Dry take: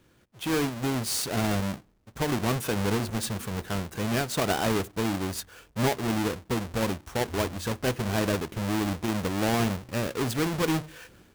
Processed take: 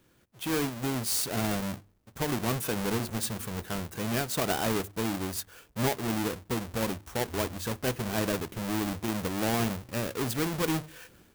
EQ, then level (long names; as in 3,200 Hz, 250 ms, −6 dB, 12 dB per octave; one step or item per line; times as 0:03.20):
high-shelf EQ 10,000 Hz +8 dB
mains-hum notches 50/100 Hz
−3.0 dB